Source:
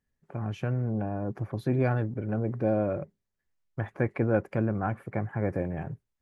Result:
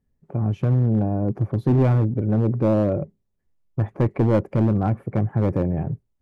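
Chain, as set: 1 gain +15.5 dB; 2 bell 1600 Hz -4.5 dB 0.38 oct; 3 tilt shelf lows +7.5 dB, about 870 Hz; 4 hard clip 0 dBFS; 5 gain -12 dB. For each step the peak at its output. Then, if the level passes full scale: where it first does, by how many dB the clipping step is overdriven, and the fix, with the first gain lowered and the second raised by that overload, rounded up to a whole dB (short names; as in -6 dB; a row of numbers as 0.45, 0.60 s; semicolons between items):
+3.5, +3.0, +7.5, 0.0, -12.0 dBFS; step 1, 7.5 dB; step 1 +7.5 dB, step 5 -4 dB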